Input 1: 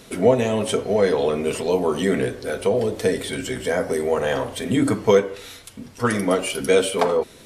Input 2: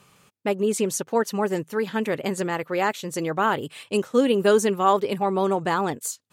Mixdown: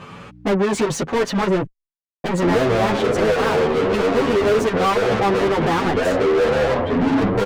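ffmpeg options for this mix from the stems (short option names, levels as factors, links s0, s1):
-filter_complex "[0:a]lowpass=1000,aemphasis=mode=reproduction:type=bsi,agate=range=0.0224:threshold=0.0355:ratio=3:detection=peak,adelay=2300,volume=0.562[s0];[1:a]aemphasis=mode=reproduction:type=riaa,aeval=exprs='val(0)+0.00316*(sin(2*PI*60*n/s)+sin(2*PI*2*60*n/s)/2+sin(2*PI*3*60*n/s)/3+sin(2*PI*4*60*n/s)/4+sin(2*PI*5*60*n/s)/5)':c=same,volume=0.447,asplit=3[s1][s2][s3];[s1]atrim=end=1.66,asetpts=PTS-STARTPTS,afade=t=out:st=1.656:d=0.004:c=hsin[s4];[s2]atrim=start=1.66:end=2.24,asetpts=PTS-STARTPTS,volume=0[s5];[s3]atrim=start=2.24,asetpts=PTS-STARTPTS,afade=t=in:d=0.004:c=hsin[s6];[s4][s5][s6]concat=n=3:v=0:a=1[s7];[s0][s7]amix=inputs=2:normalize=0,asplit=2[s8][s9];[s9]highpass=f=720:p=1,volume=89.1,asoftclip=type=tanh:threshold=0.376[s10];[s8][s10]amix=inputs=2:normalize=0,lowpass=f=2900:p=1,volume=0.501,asplit=2[s11][s12];[s12]adelay=9.1,afreqshift=0.86[s13];[s11][s13]amix=inputs=2:normalize=1"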